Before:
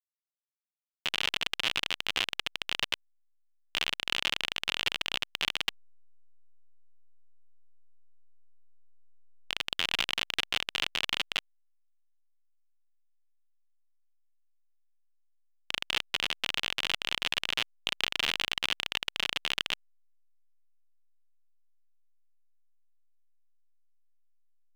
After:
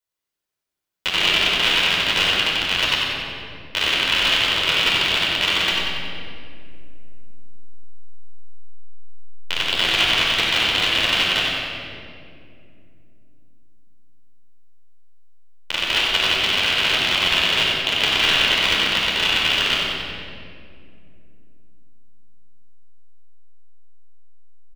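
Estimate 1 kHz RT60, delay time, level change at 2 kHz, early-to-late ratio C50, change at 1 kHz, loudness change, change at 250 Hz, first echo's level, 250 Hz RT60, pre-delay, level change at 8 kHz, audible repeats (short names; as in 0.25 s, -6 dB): 1.9 s, 93 ms, +13.5 dB, -2.5 dB, +14.5 dB, +13.0 dB, +16.5 dB, -5.0 dB, 4.2 s, 11 ms, +11.0 dB, 1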